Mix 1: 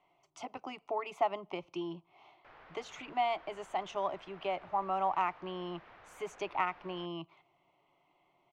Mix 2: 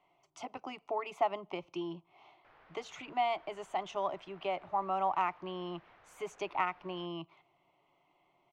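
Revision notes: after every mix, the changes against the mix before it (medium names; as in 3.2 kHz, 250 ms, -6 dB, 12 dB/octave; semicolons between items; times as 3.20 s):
background -5.5 dB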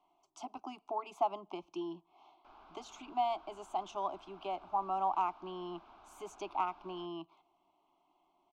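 background +7.0 dB; master: add static phaser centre 500 Hz, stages 6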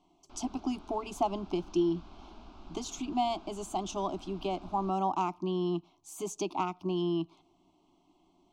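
background: entry -2.15 s; master: remove three-band isolator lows -19 dB, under 540 Hz, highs -16 dB, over 2.6 kHz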